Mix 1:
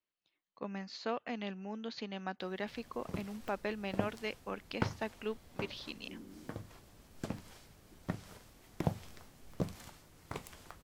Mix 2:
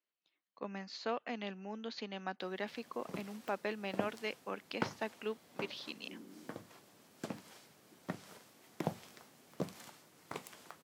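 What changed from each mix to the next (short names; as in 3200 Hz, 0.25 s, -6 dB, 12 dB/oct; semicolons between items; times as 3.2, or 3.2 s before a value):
master: add Bessel high-pass 210 Hz, order 4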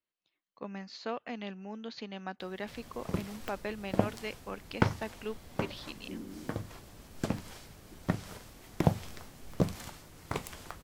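background +7.5 dB; master: remove Bessel high-pass 210 Hz, order 4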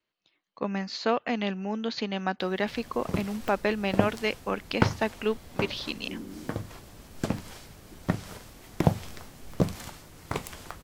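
speech +11.0 dB; background +3.5 dB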